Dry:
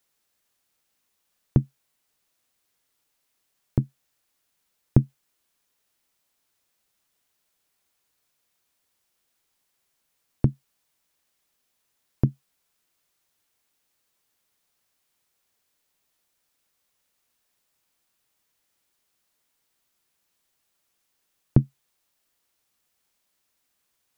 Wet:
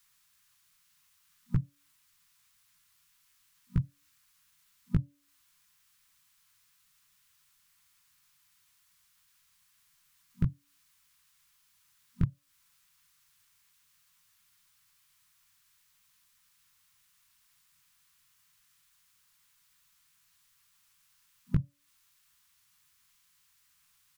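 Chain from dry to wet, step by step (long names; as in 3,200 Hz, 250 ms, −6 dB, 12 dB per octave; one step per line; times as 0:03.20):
brick-wall band-stop 190–990 Hz
pitch-shifted copies added −7 semitones −14 dB, −3 semitones −7 dB, +4 semitones −7 dB
downward compressor 6 to 1, threshold −30 dBFS, peak gain reduction 19 dB
hum removal 286 Hz, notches 2
level +5 dB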